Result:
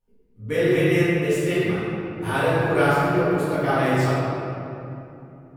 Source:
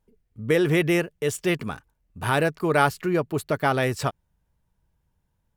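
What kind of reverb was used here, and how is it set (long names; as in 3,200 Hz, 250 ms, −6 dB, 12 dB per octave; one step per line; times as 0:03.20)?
rectangular room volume 120 cubic metres, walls hard, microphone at 1.8 metres
level −11.5 dB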